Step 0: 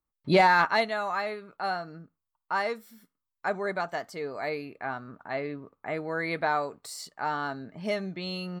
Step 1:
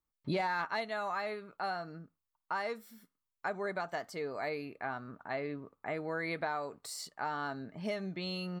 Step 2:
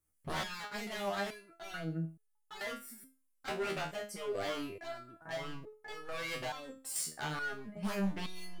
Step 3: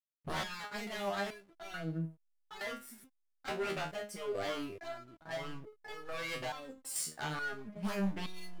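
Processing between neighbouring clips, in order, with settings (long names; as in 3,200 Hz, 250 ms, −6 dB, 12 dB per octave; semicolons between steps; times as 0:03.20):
downward compressor 4 to 1, threshold −30 dBFS, peak gain reduction 11.5 dB; level −2.5 dB
graphic EQ with 15 bands 100 Hz +8 dB, 1,000 Hz −8 dB, 4,000 Hz −11 dB, 10,000 Hz +11 dB; wave folding −36.5 dBFS; step-sequenced resonator 2.3 Hz 78–430 Hz; level +14.5 dB
slack as between gear wheels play −52 dBFS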